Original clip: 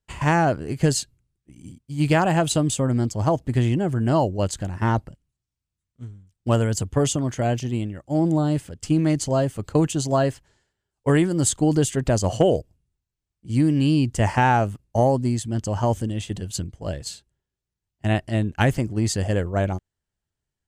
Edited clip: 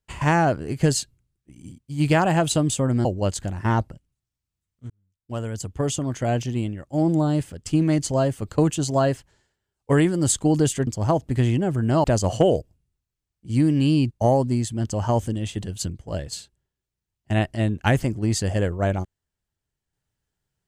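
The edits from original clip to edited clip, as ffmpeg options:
-filter_complex "[0:a]asplit=6[a][b][c][d][e][f];[a]atrim=end=3.052[g];[b]atrim=start=4.218:end=6.07,asetpts=PTS-STARTPTS,afade=t=out:st=1.848:d=0.004:c=hsin[h];[c]atrim=start=6.07:end=12.042,asetpts=PTS-STARTPTS,afade=t=in:d=1.48[i];[d]atrim=start=3.048:end=4.222[j];[e]atrim=start=12.038:end=14.112[k];[f]atrim=start=14.848[l];[h][i]concat=n=2:v=0:a=1[m];[g][m]acrossfade=d=0.004:c1=hsin:c2=hsin[n];[n][j]acrossfade=d=0.004:c1=hsin:c2=hsin[o];[o][k]acrossfade=d=0.004:c1=hsin:c2=hsin[p];[p][l]acrossfade=d=0.004:c1=hsin:c2=hsin"

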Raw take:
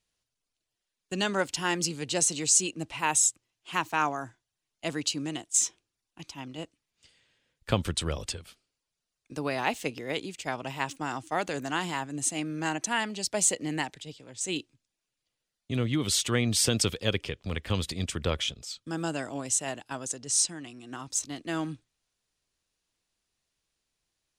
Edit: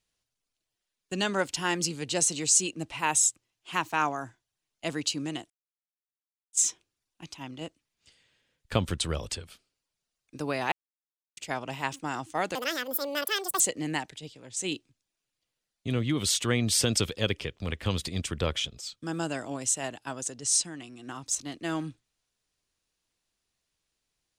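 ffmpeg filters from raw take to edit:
-filter_complex "[0:a]asplit=6[a][b][c][d][e][f];[a]atrim=end=5.5,asetpts=PTS-STARTPTS,afade=t=out:st=5.496:d=0.004:c=hsin,apad=pad_dur=1.03[g];[b]atrim=start=5.5:end=9.69,asetpts=PTS-STARTPTS,afade=t=in:d=0.004:c=hsin,afade=t=out:st=4.186:d=0.004:c=hsin[h];[c]atrim=start=9.69:end=10.34,asetpts=PTS-STARTPTS,volume=0[i];[d]atrim=start=10.34:end=11.524,asetpts=PTS-STARTPTS,afade=t=in:d=0.004:c=hsin[j];[e]atrim=start=11.52:end=13.44,asetpts=PTS-STARTPTS,asetrate=80703,aresample=44100[k];[f]atrim=start=13.436[l];[g][h][i][j]concat=n=4:v=0:a=1[m];[m][k]acrossfade=d=0.004:c1=hsin:c2=hsin[n];[n][l]acrossfade=d=0.004:c1=hsin:c2=hsin"

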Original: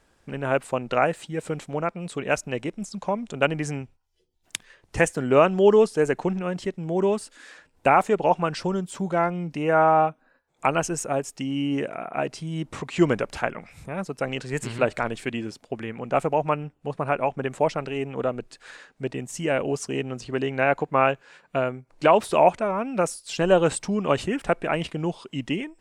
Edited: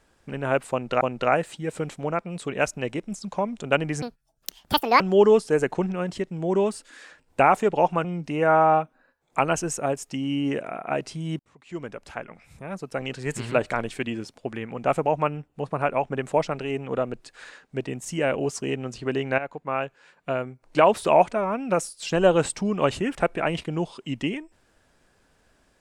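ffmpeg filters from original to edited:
-filter_complex "[0:a]asplit=7[a][b][c][d][e][f][g];[a]atrim=end=1.012[h];[b]atrim=start=0.708:end=3.724[i];[c]atrim=start=3.72:end=5.47,asetpts=PTS-STARTPTS,asetrate=78498,aresample=44100[j];[d]atrim=start=5.466:end=8.512[k];[e]atrim=start=9.308:end=12.66,asetpts=PTS-STARTPTS,afade=t=out:st=3.348:d=0.004:c=hsin[l];[f]atrim=start=12.66:end=20.65,asetpts=PTS-STARTPTS,afade=t=in:d=2.04,afade=t=out:st=7.986:d=0.004:c=hsin:silence=0.223872[m];[g]atrim=start=20.65,asetpts=PTS-STARTPTS,afade=t=in:d=1.41:silence=0.223872[n];[h][i]acrossfade=d=0.004:c1=hsin:c2=hsin[o];[o][j]acrossfade=d=0.004:c1=hsin:c2=hsin[p];[p][k]acrossfade=d=0.004:c1=hsin:c2=hsin[q];[l][m][n]concat=n=3:v=0:a=1[r];[q][r]acrossfade=d=0.004:c1=hsin:c2=hsin"

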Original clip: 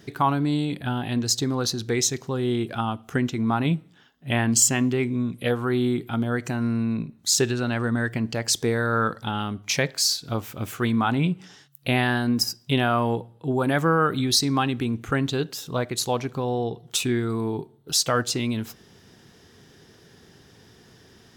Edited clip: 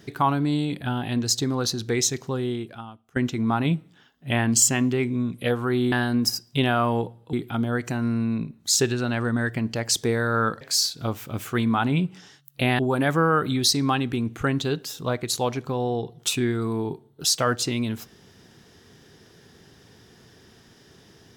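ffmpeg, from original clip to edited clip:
-filter_complex "[0:a]asplit=6[a][b][c][d][e][f];[a]atrim=end=3.16,asetpts=PTS-STARTPTS,afade=t=out:st=2.34:d=0.82:c=qua:silence=0.0944061[g];[b]atrim=start=3.16:end=5.922,asetpts=PTS-STARTPTS,afade=t=in:d=0.004:c=hsin:silence=0.0944061[h];[c]atrim=start=12.058:end=13.472[i];[d]atrim=start=5.918:end=9.202[j];[e]atrim=start=9.878:end=12.062[k];[f]atrim=start=13.468[l];[g][h]concat=n=2:v=0:a=1[m];[m][i]acrossfade=d=0.004:c1=hsin:c2=hsin[n];[n][j]acrossfade=d=0.004:c1=hsin:c2=hsin[o];[o][k]acrossfade=d=0.004:c1=hsin:c2=hsin[p];[p][l]acrossfade=d=0.004:c1=hsin:c2=hsin"

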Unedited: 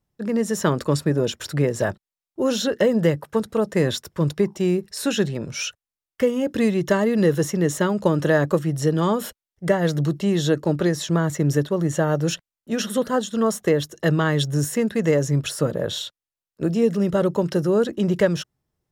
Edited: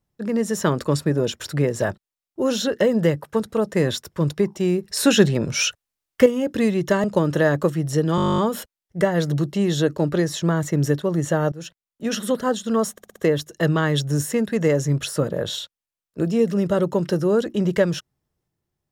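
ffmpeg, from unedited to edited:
-filter_complex "[0:a]asplit=20[a][b][c][d][e][f][g][h][i][j][k][l][m][n][o][p][q][r][s][t];[a]atrim=end=4.892[u];[b]atrim=start=4.888:end=6.262,asetpts=PTS-STARTPTS,volume=6.5dB[v];[c]atrim=start=6.258:end=7.042[w];[d]atrim=start=7.928:end=9.072[x];[e]atrim=start=9.048:end=9.072[y];[f]atrim=start=9.048:end=9.072[z];[g]atrim=start=9.048:end=9.072[aa];[h]atrim=start=9.048:end=9.072[ab];[i]atrim=start=9.048:end=9.072[ac];[j]atrim=start=9.048:end=9.072[ad];[k]atrim=start=9.048:end=9.072[ae];[l]atrim=start=9.048:end=9.072[af];[m]atrim=start=9.048:end=9.072[ag];[n]atrim=start=9.048:end=9.072[ah];[o]atrim=start=9.048:end=12.19,asetpts=PTS-STARTPTS,afade=t=out:st=3.138:d=0.004:c=hsin:silence=0.105925[ai];[p]atrim=start=12.19:end=13.652,asetpts=PTS-STARTPTS,afade=t=in:d=0.59:silence=0.105925[aj];[q]atrim=start=13.588:end=13.652[ak];[r]atrim=start=13.588:end=13.652[al];[s]atrim=start=13.588:end=13.652[am];[t]atrim=start=13.588[an];[u][v]acrossfade=d=0.004:c1=hsin:c2=hsin[ao];[ao][w]acrossfade=d=0.004:c1=hsin:c2=hsin[ap];[ap][x]acrossfade=d=0.004:c1=hsin:c2=hsin[aq];[aq][y]acrossfade=d=0.004:c1=hsin:c2=hsin[ar];[ar][z]acrossfade=d=0.004:c1=hsin:c2=hsin[as];[as][aa]acrossfade=d=0.004:c1=hsin:c2=hsin[at];[at][ab]acrossfade=d=0.004:c1=hsin:c2=hsin[au];[au][ac]acrossfade=d=0.004:c1=hsin:c2=hsin[av];[av][ad]acrossfade=d=0.004:c1=hsin:c2=hsin[aw];[aw][ae]acrossfade=d=0.004:c1=hsin:c2=hsin[ax];[ax][af]acrossfade=d=0.004:c1=hsin:c2=hsin[ay];[ay][ag]acrossfade=d=0.004:c1=hsin:c2=hsin[az];[az][ah]acrossfade=d=0.004:c1=hsin:c2=hsin[ba];[ai][aj]concat=n=2:v=0:a=1[bb];[ba][bb]acrossfade=d=0.004:c1=hsin:c2=hsin[bc];[bc][ak]acrossfade=d=0.004:c1=hsin:c2=hsin[bd];[bd][al]acrossfade=d=0.004:c1=hsin:c2=hsin[be];[be][am]acrossfade=d=0.004:c1=hsin:c2=hsin[bf];[bf][an]acrossfade=d=0.004:c1=hsin:c2=hsin"

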